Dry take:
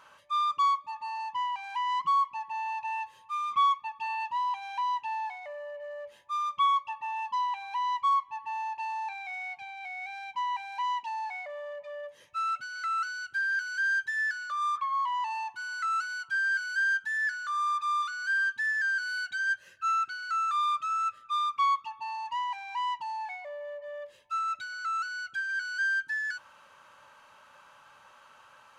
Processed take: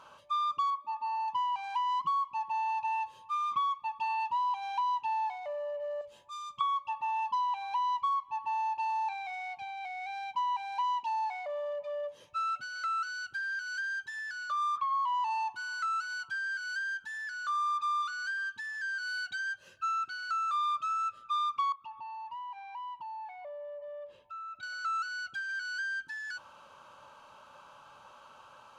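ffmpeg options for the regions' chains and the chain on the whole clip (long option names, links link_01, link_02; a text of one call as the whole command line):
ffmpeg -i in.wav -filter_complex "[0:a]asettb=1/sr,asplit=3[link_01][link_02][link_03];[link_01]atrim=end=0.704[link_04];[link_02]atrim=start=0.7:end=1.28,asetpts=PTS-STARTPTS,afade=type=in:duration=0.004:curve=qsin,afade=type=out:start_time=0.576:duration=0.004:curve=qsin,highpass=frequency=220:width=0.5412,highpass=frequency=220:width=1.3066,highshelf=frequency=3500:gain=-10.5[link_05];[link_03]atrim=start=1.276[link_06];[link_04][link_05]acrossfade=duration=0.004:curve1=hsin:curve2=qsin[link_07];[link_07][link_06]acrossfade=duration=0.004:curve1=qsin:curve2=hsin,asettb=1/sr,asplit=3[link_08][link_09][link_10];[link_08]atrim=end=6.014[link_11];[link_09]atrim=start=6.01:end=6.61,asetpts=PTS-STARTPTS,afade=type=in:duration=0.004:curve=qsin,afade=type=out:start_time=0.596:duration=0.004:curve=qsin,equalizer=frequency=7500:width=8:gain=8.5,acrossover=split=190|3000[link_12][link_13][link_14];[link_13]acompressor=threshold=-56dB:ratio=2:attack=3.2:release=140:knee=2.83:detection=peak[link_15];[link_12][link_15][link_14]amix=inputs=3:normalize=0[link_16];[link_10]atrim=start=6.606[link_17];[link_11][link_16]acrossfade=duration=0.004:curve1=hsin:curve2=qsin[link_18];[link_18][link_17]acrossfade=duration=0.004:curve1=qsin:curve2=hsin,asettb=1/sr,asplit=3[link_19][link_20][link_21];[link_19]atrim=end=21.724[link_22];[link_20]atrim=start=21.72:end=24.63,asetpts=PTS-STARTPTS,afade=type=in:duration=0.004:curve=qsin,afade=type=out:start_time=2.906:duration=0.004:curve=qsin,bass=frequency=250:gain=0,treble=frequency=4000:gain=-14,acompressor=threshold=-46dB:ratio=3:attack=3.2:release=140:knee=1:detection=peak[link_23];[link_21]atrim=start=24.626[link_24];[link_22][link_23]acrossfade=duration=0.004:curve1=hsin:curve2=qsin[link_25];[link_25][link_24]acrossfade=duration=0.004:curve1=qsin:curve2=hsin,highshelf=frequency=6200:gain=-10,acompressor=threshold=-31dB:ratio=6,equalizer=frequency=1900:width_type=o:width=0.55:gain=-13.5,volume=4.5dB" out.wav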